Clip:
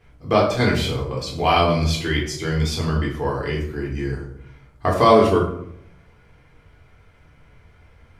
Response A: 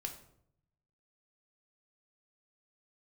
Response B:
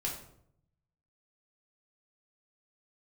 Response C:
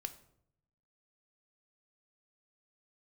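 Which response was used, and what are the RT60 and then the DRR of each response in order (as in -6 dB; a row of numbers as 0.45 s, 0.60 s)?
B; 0.70 s, 0.70 s, 0.70 s; 3.5 dB, -3.0 dB, 9.0 dB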